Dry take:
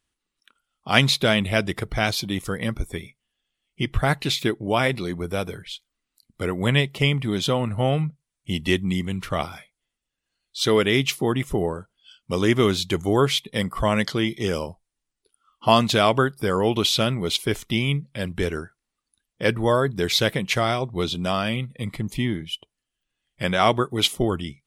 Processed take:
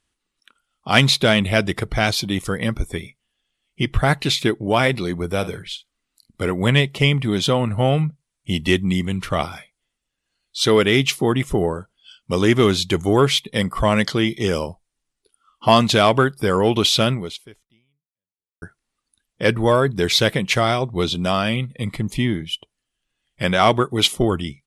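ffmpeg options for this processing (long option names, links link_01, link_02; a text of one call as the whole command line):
ffmpeg -i in.wav -filter_complex "[0:a]asplit=3[link_01][link_02][link_03];[link_01]afade=type=out:start_time=5.41:duration=0.02[link_04];[link_02]asplit=2[link_05][link_06];[link_06]adelay=49,volume=-14dB[link_07];[link_05][link_07]amix=inputs=2:normalize=0,afade=type=in:start_time=5.41:duration=0.02,afade=type=out:start_time=6.51:duration=0.02[link_08];[link_03]afade=type=in:start_time=6.51:duration=0.02[link_09];[link_04][link_08][link_09]amix=inputs=3:normalize=0,asplit=2[link_10][link_11];[link_10]atrim=end=18.62,asetpts=PTS-STARTPTS,afade=type=out:start_time=17.13:duration=1.49:curve=exp[link_12];[link_11]atrim=start=18.62,asetpts=PTS-STARTPTS,afade=type=in:duration=0.004:curve=hsin[link_13];[link_12][link_13]concat=n=2:v=0:a=1,lowpass=frequency=12000:width=0.5412,lowpass=frequency=12000:width=1.3066,acontrast=30,volume=-1dB" out.wav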